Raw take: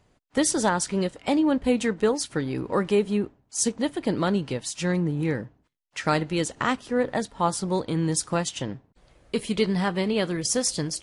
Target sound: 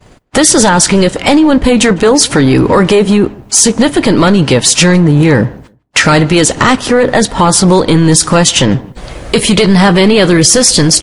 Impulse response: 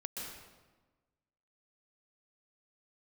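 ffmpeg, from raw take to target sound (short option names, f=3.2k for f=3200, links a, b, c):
-filter_complex "[0:a]agate=range=-33dB:threshold=-56dB:ratio=3:detection=peak,acompressor=threshold=-34dB:ratio=2.5,apsyclip=34dB,asplit=2[a][b];[b]adelay=154,lowpass=f=2.2k:p=1,volume=-24dB,asplit=2[c][d];[d]adelay=154,lowpass=f=2.2k:p=1,volume=0.24[e];[c][e]amix=inputs=2:normalize=0[f];[a][f]amix=inputs=2:normalize=0,volume=-2dB"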